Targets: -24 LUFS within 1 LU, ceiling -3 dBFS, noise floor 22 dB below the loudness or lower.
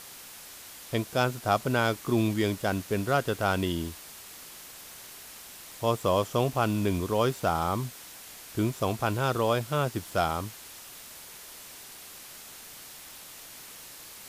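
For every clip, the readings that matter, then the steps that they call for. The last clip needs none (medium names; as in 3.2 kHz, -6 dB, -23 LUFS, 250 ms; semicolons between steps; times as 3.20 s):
noise floor -46 dBFS; noise floor target -51 dBFS; loudness -28.5 LUFS; peak level -11.5 dBFS; loudness target -24.0 LUFS
-> noise reduction 6 dB, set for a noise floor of -46 dBFS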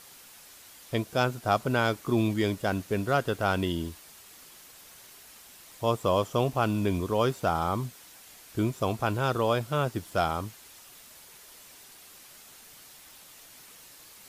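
noise floor -52 dBFS; loudness -28.5 LUFS; peak level -11.5 dBFS; loudness target -24.0 LUFS
-> trim +4.5 dB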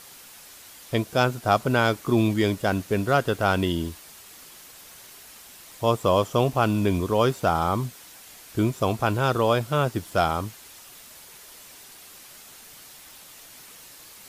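loudness -24.0 LUFS; peak level -7.0 dBFS; noise floor -47 dBFS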